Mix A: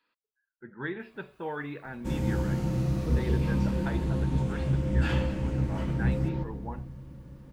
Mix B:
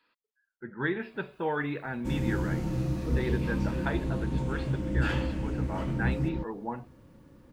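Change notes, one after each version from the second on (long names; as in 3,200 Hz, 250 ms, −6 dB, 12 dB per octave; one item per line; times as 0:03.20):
speech +5.0 dB
first sound: add parametric band 300 Hz +5.5 dB 0.27 octaves
reverb: off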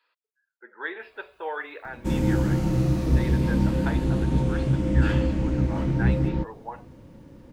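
speech: add high-pass filter 450 Hz 24 dB per octave
first sound +7.5 dB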